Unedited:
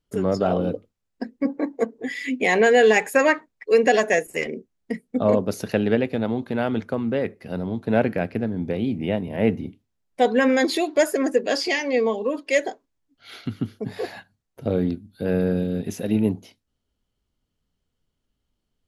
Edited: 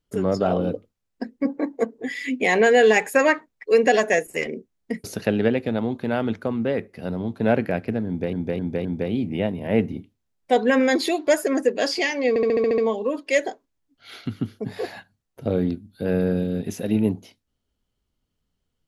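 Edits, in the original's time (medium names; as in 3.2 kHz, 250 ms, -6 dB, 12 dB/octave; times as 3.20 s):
5.04–5.51 s: delete
8.54–8.80 s: loop, 4 plays
11.98 s: stutter 0.07 s, 8 plays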